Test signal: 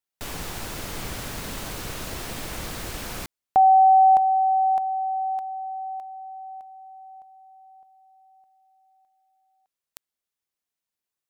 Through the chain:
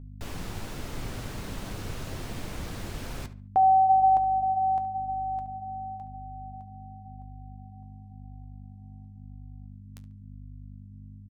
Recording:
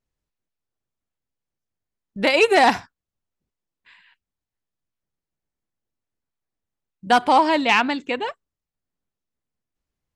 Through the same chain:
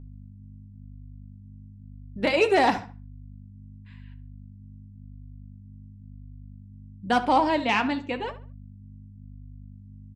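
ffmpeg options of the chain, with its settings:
-filter_complex "[0:a]lowshelf=f=420:g=7,aeval=exprs='val(0)+0.02*(sin(2*PI*50*n/s)+sin(2*PI*2*50*n/s)/2+sin(2*PI*3*50*n/s)/3+sin(2*PI*4*50*n/s)/4+sin(2*PI*5*50*n/s)/5)':c=same,flanger=delay=7.5:depth=3.3:regen=-60:speed=0.95:shape=sinusoidal,highshelf=f=10k:g=-7.5,asplit=2[a][b];[b]adelay=71,lowpass=f=3.1k:p=1,volume=-13.5dB,asplit=2[c][d];[d]adelay=71,lowpass=f=3.1k:p=1,volume=0.32,asplit=2[e][f];[f]adelay=71,lowpass=f=3.1k:p=1,volume=0.32[g];[c][e][g]amix=inputs=3:normalize=0[h];[a][h]amix=inputs=2:normalize=0,volume=-3dB"

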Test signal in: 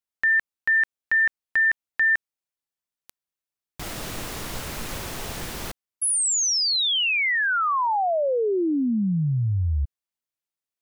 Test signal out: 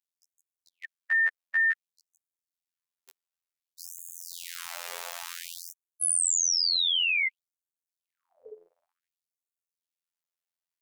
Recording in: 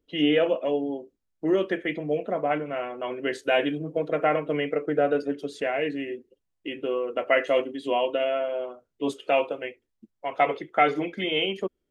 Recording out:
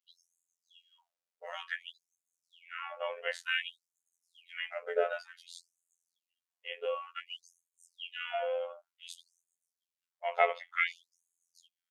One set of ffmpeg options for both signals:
-af "afftfilt=real='hypot(re,im)*cos(PI*b)':imag='0':win_size=2048:overlap=0.75,asubboost=boost=10:cutoff=54,afftfilt=real='re*gte(b*sr/1024,410*pow(6500/410,0.5+0.5*sin(2*PI*0.55*pts/sr)))':imag='im*gte(b*sr/1024,410*pow(6500/410,0.5+0.5*sin(2*PI*0.55*pts/sr)))':win_size=1024:overlap=0.75"

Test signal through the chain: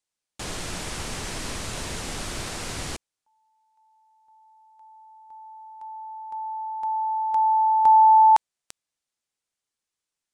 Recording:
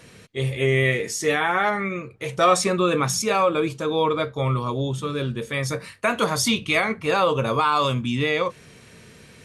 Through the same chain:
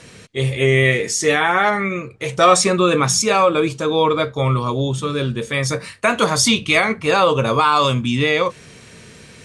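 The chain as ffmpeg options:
-af "lowpass=f=9.4k:w=0.5412,lowpass=f=9.4k:w=1.3066,highshelf=f=5.7k:g=5.5,volume=5dB"

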